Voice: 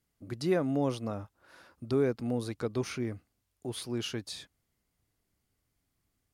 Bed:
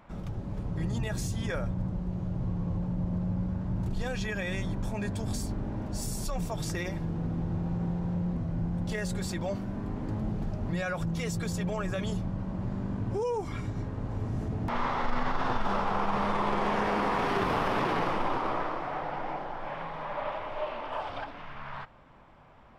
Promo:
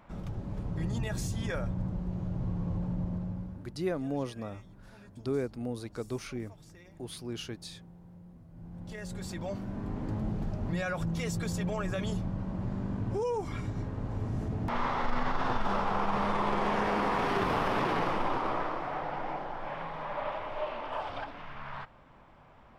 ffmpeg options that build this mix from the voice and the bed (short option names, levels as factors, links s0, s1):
-filter_complex "[0:a]adelay=3350,volume=0.631[s0];[1:a]volume=8.41,afade=t=out:st=2.95:d=0.81:silence=0.105925,afade=t=in:st=8.5:d=1.47:silence=0.1[s1];[s0][s1]amix=inputs=2:normalize=0"